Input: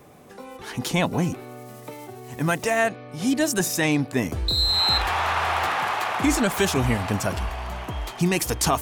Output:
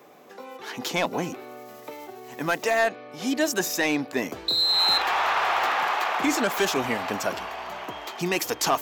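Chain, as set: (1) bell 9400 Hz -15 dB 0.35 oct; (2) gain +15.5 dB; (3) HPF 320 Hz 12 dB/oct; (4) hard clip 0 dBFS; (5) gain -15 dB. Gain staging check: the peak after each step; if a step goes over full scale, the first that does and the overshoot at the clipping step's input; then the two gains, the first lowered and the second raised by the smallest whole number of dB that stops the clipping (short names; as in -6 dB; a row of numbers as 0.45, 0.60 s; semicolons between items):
-11.0, +4.5, +6.5, 0.0, -15.0 dBFS; step 2, 6.5 dB; step 2 +8.5 dB, step 5 -8 dB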